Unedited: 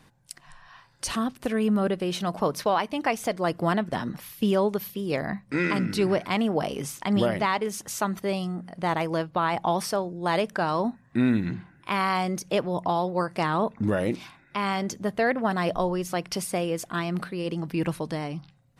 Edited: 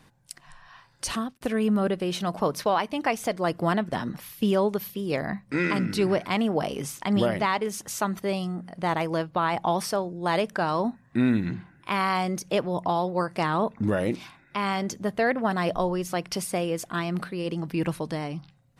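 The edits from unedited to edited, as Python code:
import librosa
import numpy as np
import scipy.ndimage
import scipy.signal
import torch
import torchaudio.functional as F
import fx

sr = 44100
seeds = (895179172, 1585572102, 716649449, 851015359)

y = fx.edit(x, sr, fx.fade_out_span(start_s=1.14, length_s=0.27), tone=tone)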